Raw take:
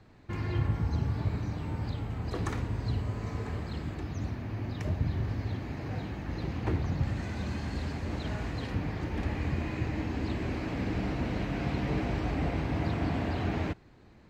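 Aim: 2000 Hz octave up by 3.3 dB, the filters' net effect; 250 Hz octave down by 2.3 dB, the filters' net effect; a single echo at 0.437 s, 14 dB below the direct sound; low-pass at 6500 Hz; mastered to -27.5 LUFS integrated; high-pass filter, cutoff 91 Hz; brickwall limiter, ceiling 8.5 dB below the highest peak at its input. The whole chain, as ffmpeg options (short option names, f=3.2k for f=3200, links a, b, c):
-af "highpass=91,lowpass=6.5k,equalizer=f=250:t=o:g=-3,equalizer=f=2k:t=o:g=4,alimiter=level_in=2.5dB:limit=-24dB:level=0:latency=1,volume=-2.5dB,aecho=1:1:437:0.2,volume=9dB"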